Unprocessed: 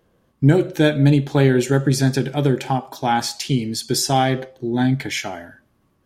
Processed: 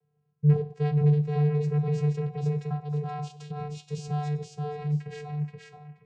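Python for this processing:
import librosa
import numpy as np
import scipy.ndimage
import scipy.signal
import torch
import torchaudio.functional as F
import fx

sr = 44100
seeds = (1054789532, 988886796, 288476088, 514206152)

y = fx.over_compress(x, sr, threshold_db=-21.0, ratio=-0.5, at=(3.43, 3.92))
y = fx.vocoder(y, sr, bands=8, carrier='square', carrier_hz=148.0)
y = fx.echo_feedback(y, sr, ms=477, feedback_pct=18, wet_db=-3.5)
y = y * 10.0 ** (-7.5 / 20.0)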